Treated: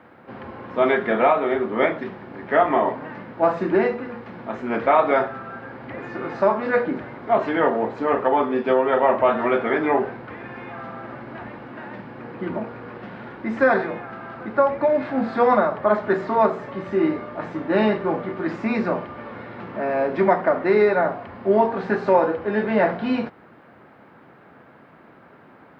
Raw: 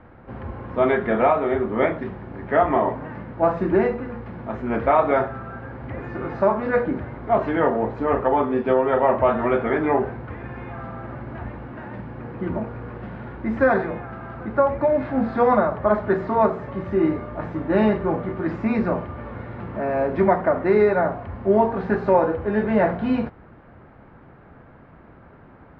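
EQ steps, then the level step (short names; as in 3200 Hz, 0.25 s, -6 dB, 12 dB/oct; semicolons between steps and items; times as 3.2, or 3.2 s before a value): HPF 190 Hz 12 dB/oct; high shelf 3100 Hz +11.5 dB; 0.0 dB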